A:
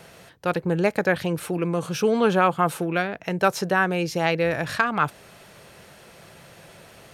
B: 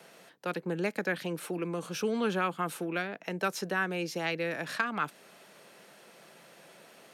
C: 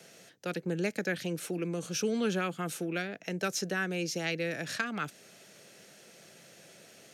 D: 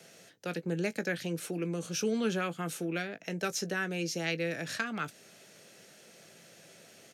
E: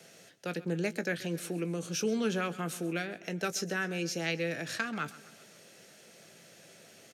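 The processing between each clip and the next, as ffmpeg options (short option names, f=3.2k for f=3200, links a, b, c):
-filter_complex "[0:a]highpass=f=190:w=0.5412,highpass=f=190:w=1.3066,acrossover=split=400|1200[a][b][c];[b]acompressor=threshold=-32dB:ratio=6[d];[a][d][c]amix=inputs=3:normalize=0,volume=-6.5dB"
-af "equalizer=f=100:t=o:w=0.67:g=12,equalizer=f=1k:t=o:w=0.67:g=-11,equalizer=f=6.3k:t=o:w=0.67:g=8"
-filter_complex "[0:a]asplit=2[a][b];[b]adelay=18,volume=-12dB[c];[a][c]amix=inputs=2:normalize=0,volume=-1dB"
-af "aecho=1:1:132|264|396|528:0.126|0.0667|0.0354|0.0187"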